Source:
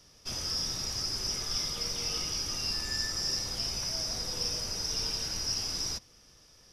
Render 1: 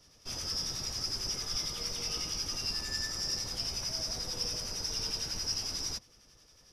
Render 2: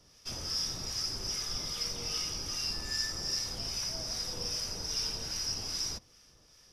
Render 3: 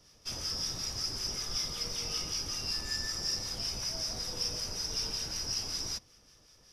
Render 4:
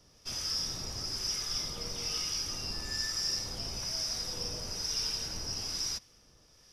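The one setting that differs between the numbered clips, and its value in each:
harmonic tremolo, rate: 11, 2.5, 5.3, 1.1 Hz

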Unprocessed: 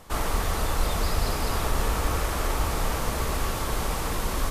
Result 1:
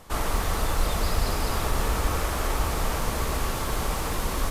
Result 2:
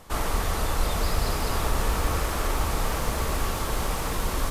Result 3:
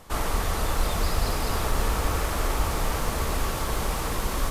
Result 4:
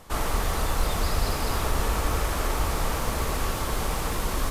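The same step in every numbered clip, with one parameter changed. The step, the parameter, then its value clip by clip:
lo-fi delay, time: 155, 862, 546, 83 ms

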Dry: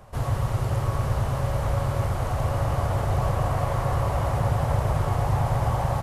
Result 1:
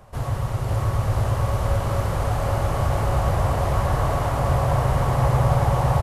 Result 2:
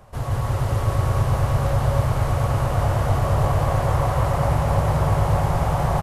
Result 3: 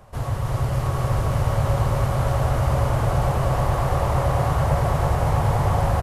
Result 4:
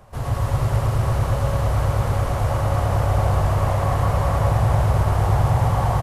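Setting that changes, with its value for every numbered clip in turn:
bouncing-ball echo, first gap: 0.54, 0.17, 0.32, 0.11 s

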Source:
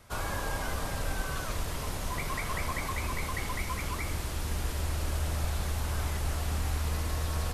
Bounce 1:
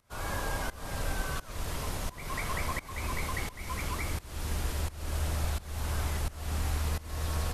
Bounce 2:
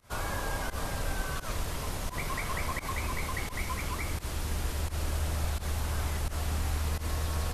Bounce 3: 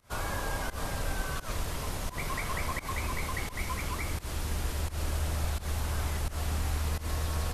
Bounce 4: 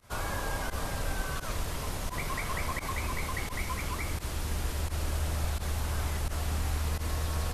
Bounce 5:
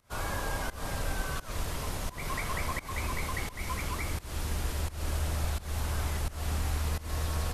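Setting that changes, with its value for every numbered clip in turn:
pump, release: 411, 93, 138, 63, 247 ms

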